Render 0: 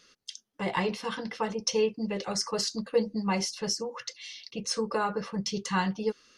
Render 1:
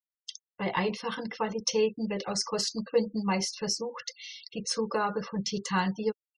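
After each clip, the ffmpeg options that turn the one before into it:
-af "afftfilt=real='re*gte(hypot(re,im),0.00631)':imag='im*gte(hypot(re,im),0.00631)':win_size=1024:overlap=0.75"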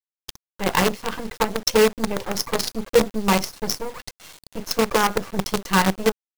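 -filter_complex "[0:a]asplit=2[a][b];[b]adynamicsmooth=sensitivity=7:basefreq=930,volume=1dB[c];[a][c]amix=inputs=2:normalize=0,acrusher=bits=4:dc=4:mix=0:aa=0.000001,volume=2.5dB"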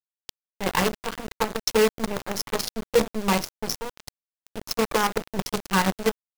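-af "aeval=exprs='val(0)*gte(abs(val(0)),0.0631)':c=same,volume=-3.5dB"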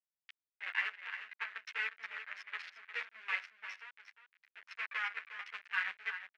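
-filter_complex "[0:a]asuperpass=centerf=2000:order=4:qfactor=1.9,aecho=1:1:355:0.282,asplit=2[a][b];[b]adelay=10.8,afreqshift=-0.56[c];[a][c]amix=inputs=2:normalize=1,volume=-1dB"

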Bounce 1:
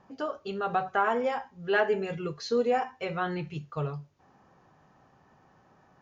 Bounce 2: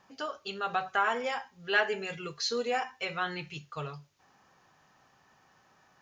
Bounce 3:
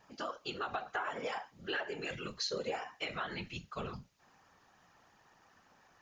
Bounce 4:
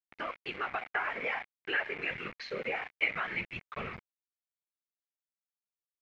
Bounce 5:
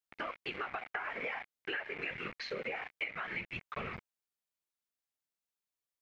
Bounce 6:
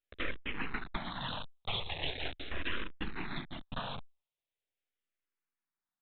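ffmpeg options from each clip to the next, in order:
-af "tiltshelf=f=1.3k:g=-8.5"
-af "acompressor=threshold=-33dB:ratio=8,afftfilt=real='hypot(re,im)*cos(2*PI*random(0))':imag='hypot(re,im)*sin(2*PI*random(1))':win_size=512:overlap=0.75,volume=4.5dB"
-af "aeval=exprs='val(0)*gte(abs(val(0)),0.00708)':c=same,lowpass=f=2.2k:t=q:w=5.5"
-af "acompressor=threshold=-37dB:ratio=6,volume=1.5dB"
-filter_complex "[0:a]aresample=8000,aeval=exprs='abs(val(0))':c=same,aresample=44100,asplit=2[a][b];[b]afreqshift=-0.41[c];[a][c]amix=inputs=2:normalize=1,volume=8dB"

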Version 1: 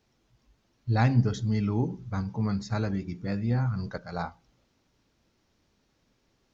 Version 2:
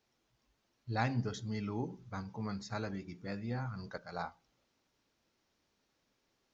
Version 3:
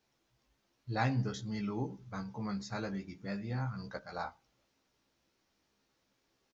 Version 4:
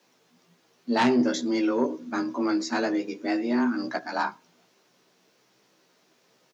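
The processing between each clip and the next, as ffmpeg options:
-af "lowshelf=f=240:g=-10.5,volume=-5dB"
-filter_complex "[0:a]asplit=2[a][b];[b]adelay=15,volume=-5dB[c];[a][c]amix=inputs=2:normalize=0"
-af "aeval=exprs='0.158*sin(PI/2*2.82*val(0)/0.158)':c=same,afreqshift=120"

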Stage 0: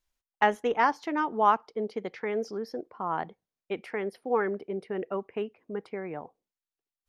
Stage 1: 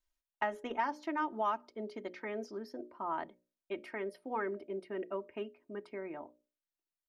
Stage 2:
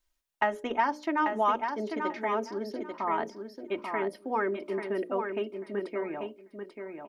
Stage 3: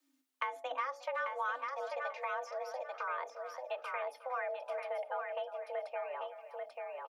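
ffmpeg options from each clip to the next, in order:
-filter_complex "[0:a]bandreject=f=60:t=h:w=6,bandreject=f=120:t=h:w=6,bandreject=f=180:t=h:w=6,bandreject=f=240:t=h:w=6,bandreject=f=300:t=h:w=6,bandreject=f=360:t=h:w=6,bandreject=f=420:t=h:w=6,bandreject=f=480:t=h:w=6,bandreject=f=540:t=h:w=6,bandreject=f=600:t=h:w=6,aecho=1:1:3.2:0.67,acrossover=split=1300|2700[a][b][c];[a]acompressor=threshold=-25dB:ratio=4[d];[b]acompressor=threshold=-33dB:ratio=4[e];[c]acompressor=threshold=-49dB:ratio=4[f];[d][e][f]amix=inputs=3:normalize=0,volume=-7dB"
-af "aecho=1:1:840|1680|2520:0.501|0.0902|0.0162,volume=7dB"
-filter_complex "[0:a]asplit=2[a][b];[b]adelay=360,highpass=300,lowpass=3.4k,asoftclip=type=hard:threshold=-21.5dB,volume=-17dB[c];[a][c]amix=inputs=2:normalize=0,afreqshift=260,acrossover=split=230[d][e];[e]acompressor=threshold=-44dB:ratio=2[f];[d][f]amix=inputs=2:normalize=0,volume=1dB"

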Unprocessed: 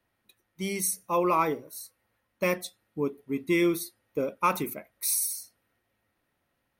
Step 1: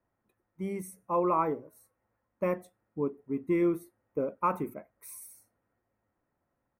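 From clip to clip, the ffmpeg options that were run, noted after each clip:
-af "firequalizer=gain_entry='entry(1000,0);entry(4100,-28);entry(7800,-17)':delay=0.05:min_phase=1,volume=-2dB"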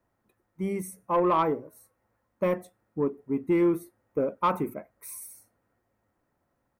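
-af "asoftclip=type=tanh:threshold=-20dB,volume=5dB"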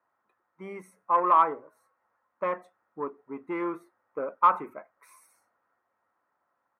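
-af "bandpass=f=1.2k:t=q:w=1.9:csg=0,volume=6.5dB"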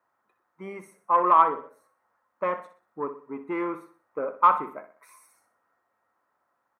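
-af "aecho=1:1:62|124|186|248:0.251|0.1|0.0402|0.0161,volume=2dB"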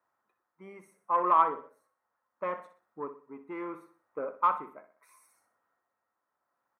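-af "tremolo=f=0.73:d=0.44,volume=-5dB"

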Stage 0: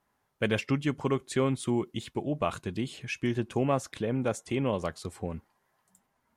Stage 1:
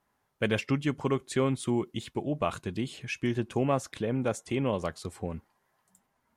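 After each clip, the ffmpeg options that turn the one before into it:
-af anull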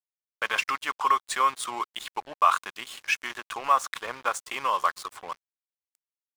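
-af "alimiter=limit=-22dB:level=0:latency=1:release=13,highpass=f=1.1k:t=q:w=4.2,aeval=exprs='sgn(val(0))*max(abs(val(0))-0.00422,0)':c=same,volume=9dB"

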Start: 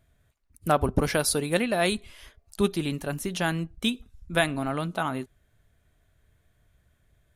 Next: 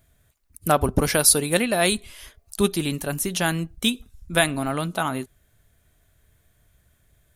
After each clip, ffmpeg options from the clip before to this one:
-af "highshelf=f=6.1k:g=11,volume=3dB"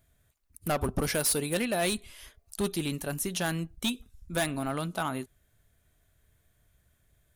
-af "asoftclip=type=hard:threshold=-17dB,volume=-6dB"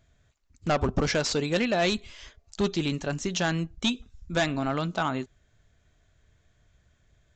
-af "aresample=16000,aresample=44100,volume=4dB"

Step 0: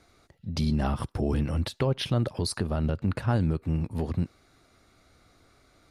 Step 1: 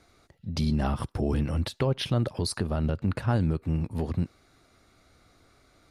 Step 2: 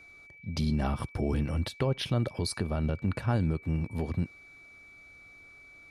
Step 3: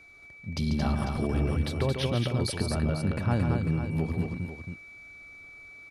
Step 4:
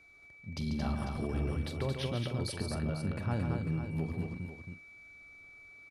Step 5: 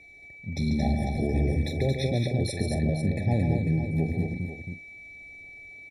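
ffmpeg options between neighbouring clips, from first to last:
-af anull
-af "aeval=exprs='val(0)+0.00398*sin(2*PI*2300*n/s)':c=same,volume=-2.5dB"
-af "aecho=1:1:141|224|497:0.447|0.596|0.335"
-filter_complex "[0:a]asplit=2[a][b];[b]adelay=44,volume=-13dB[c];[a][c]amix=inputs=2:normalize=0,volume=-7dB"
-af "afftfilt=real='re*eq(mod(floor(b*sr/1024/860),2),0)':imag='im*eq(mod(floor(b*sr/1024/860),2),0)':win_size=1024:overlap=0.75,volume=8.5dB"

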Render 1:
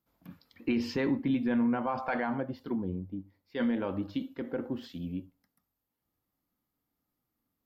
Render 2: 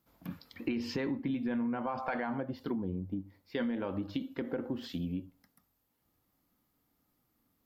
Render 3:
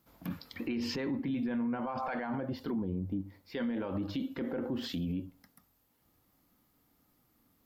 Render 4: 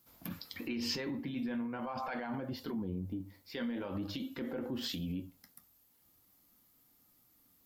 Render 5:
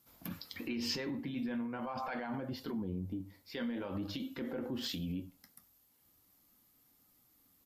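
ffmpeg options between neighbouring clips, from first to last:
-af "acompressor=threshold=-41dB:ratio=4,volume=7.5dB"
-af "alimiter=level_in=9dB:limit=-24dB:level=0:latency=1:release=21,volume=-9dB,volume=5.5dB"
-af "flanger=delay=8.1:depth=5.1:regen=-60:speed=0.44:shape=sinusoidal,highshelf=f=3.2k:g=11.5"
-filter_complex "[0:a]asplit=2[a][b];[b]adelay=99.13,volume=-28dB,highshelf=f=4k:g=-2.23[c];[a][c]amix=inputs=2:normalize=0" -ar 32000 -c:a libmp3lame -b:a 80k

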